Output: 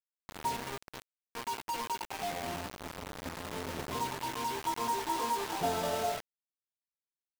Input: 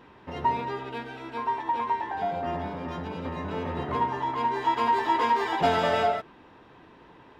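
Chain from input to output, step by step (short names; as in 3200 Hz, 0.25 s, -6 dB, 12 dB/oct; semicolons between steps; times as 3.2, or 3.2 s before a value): HPF 52 Hz 12 dB/oct; bell 2000 Hz -11 dB 0.88 oct; bit-crush 5-bit; gain -8 dB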